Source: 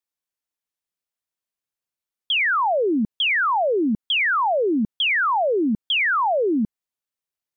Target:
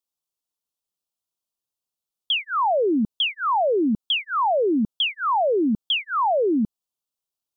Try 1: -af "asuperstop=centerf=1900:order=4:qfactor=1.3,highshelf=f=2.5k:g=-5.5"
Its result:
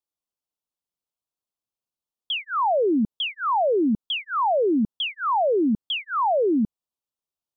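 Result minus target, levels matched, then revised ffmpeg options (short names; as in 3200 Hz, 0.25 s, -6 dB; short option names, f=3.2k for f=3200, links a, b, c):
4000 Hz band -3.5 dB
-af "asuperstop=centerf=1900:order=4:qfactor=1.3,highshelf=f=2.5k:g=2"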